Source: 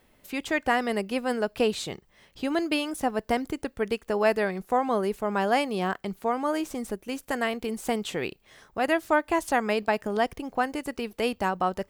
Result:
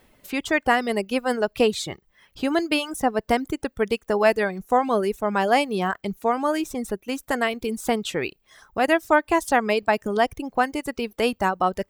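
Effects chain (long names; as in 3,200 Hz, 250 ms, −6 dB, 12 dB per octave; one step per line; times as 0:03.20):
reverb reduction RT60 0.91 s
level +5 dB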